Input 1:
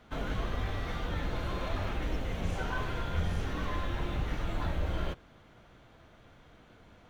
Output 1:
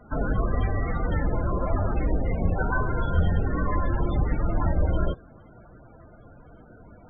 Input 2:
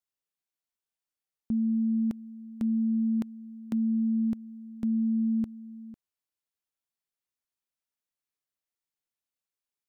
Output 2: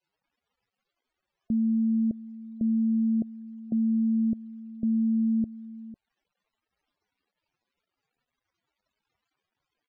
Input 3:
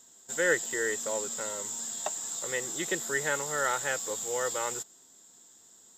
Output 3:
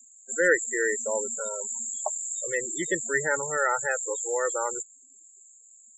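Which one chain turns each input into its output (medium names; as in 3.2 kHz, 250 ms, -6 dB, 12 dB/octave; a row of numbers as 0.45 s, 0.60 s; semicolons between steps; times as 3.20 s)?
crackle 370 per s -60 dBFS; loudest bins only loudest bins 32; normalise loudness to -27 LUFS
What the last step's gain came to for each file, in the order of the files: +9.5 dB, +2.0 dB, +5.0 dB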